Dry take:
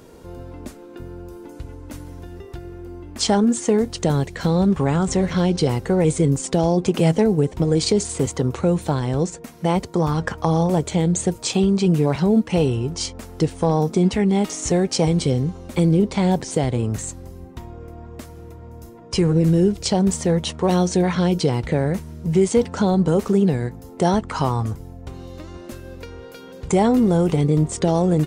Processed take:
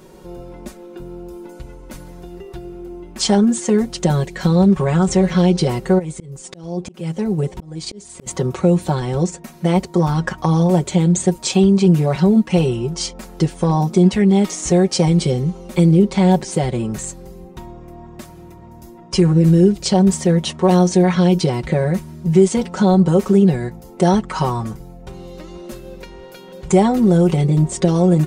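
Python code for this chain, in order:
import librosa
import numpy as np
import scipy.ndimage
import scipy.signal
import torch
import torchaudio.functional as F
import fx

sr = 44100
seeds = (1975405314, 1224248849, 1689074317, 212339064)

y = x + 0.87 * np.pad(x, (int(5.4 * sr / 1000.0), 0))[:len(x)]
y = fx.auto_swell(y, sr, attack_ms=716.0, at=(5.98, 8.26), fade=0.02)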